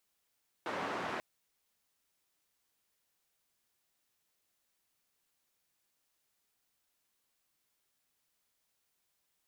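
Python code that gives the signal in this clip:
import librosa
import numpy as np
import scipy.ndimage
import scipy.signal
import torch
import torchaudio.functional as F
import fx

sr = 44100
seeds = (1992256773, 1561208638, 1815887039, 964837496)

y = fx.band_noise(sr, seeds[0], length_s=0.54, low_hz=200.0, high_hz=1300.0, level_db=-38.0)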